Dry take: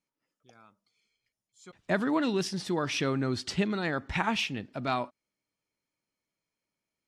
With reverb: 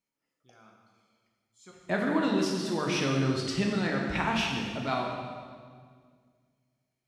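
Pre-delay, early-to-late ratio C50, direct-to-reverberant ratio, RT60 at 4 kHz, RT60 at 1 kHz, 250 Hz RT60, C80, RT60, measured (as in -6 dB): 8 ms, 2.0 dB, -1.0 dB, 1.6 s, 1.7 s, 2.3 s, 3.5 dB, 1.9 s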